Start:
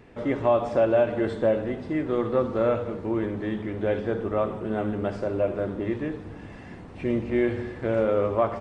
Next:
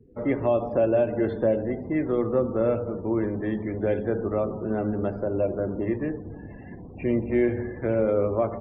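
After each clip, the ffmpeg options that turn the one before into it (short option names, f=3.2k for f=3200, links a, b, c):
-filter_complex "[0:a]acrossover=split=250|680|1800[a][b][c][d];[c]acompressor=threshold=-40dB:ratio=8[e];[a][b][e][d]amix=inputs=4:normalize=0,afftdn=nr=36:nf=-43,adynamicequalizer=threshold=0.00631:dfrequency=2200:dqfactor=0.7:tfrequency=2200:tqfactor=0.7:attack=5:release=100:ratio=0.375:range=2.5:mode=cutabove:tftype=highshelf,volume=1.5dB"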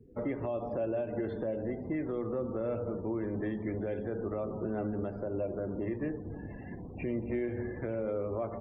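-af "alimiter=limit=-23.5dB:level=0:latency=1:release=264,volume=-2dB"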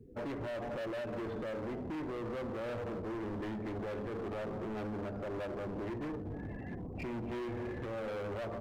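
-af "asoftclip=type=hard:threshold=-38.5dB,volume=1.5dB"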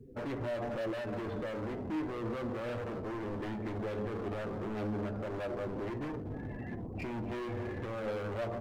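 -af "flanger=delay=7.6:depth=2.5:regen=55:speed=0.33:shape=sinusoidal,volume=6dB"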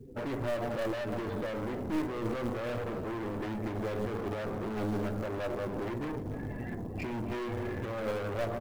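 -af "aecho=1:1:302:0.133,acrusher=bits=8:mode=log:mix=0:aa=0.000001,aeval=exprs='0.0316*(cos(1*acos(clip(val(0)/0.0316,-1,1)))-cos(1*PI/2))+0.00631*(cos(2*acos(clip(val(0)/0.0316,-1,1)))-cos(2*PI/2))+0.00398*(cos(3*acos(clip(val(0)/0.0316,-1,1)))-cos(3*PI/2))+0.00224*(cos(5*acos(clip(val(0)/0.0316,-1,1)))-cos(5*PI/2))':c=same,volume=4dB"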